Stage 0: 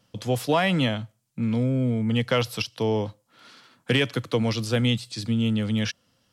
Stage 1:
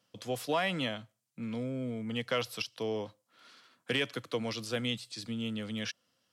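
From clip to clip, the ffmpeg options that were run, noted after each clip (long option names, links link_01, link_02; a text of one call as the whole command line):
ffmpeg -i in.wav -af "highpass=frequency=340:poles=1,bandreject=frequency=870:width=15,volume=-7dB" out.wav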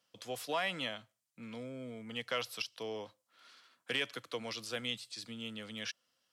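ffmpeg -i in.wav -af "lowshelf=frequency=400:gain=-10.5,volume=-2dB" out.wav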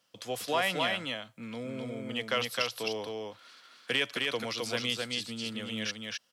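ffmpeg -i in.wav -af "aecho=1:1:262:0.708,volume=5.5dB" out.wav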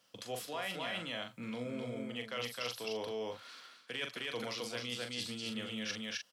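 ffmpeg -i in.wav -filter_complex "[0:a]areverse,acompressor=threshold=-39dB:ratio=6,areverse,asplit=2[link_01][link_02];[link_02]adelay=41,volume=-6.5dB[link_03];[link_01][link_03]amix=inputs=2:normalize=0,volume=1.5dB" out.wav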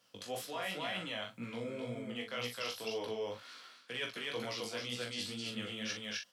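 ffmpeg -i in.wav -af "flanger=delay=16:depth=4.6:speed=2,volume=3dB" out.wav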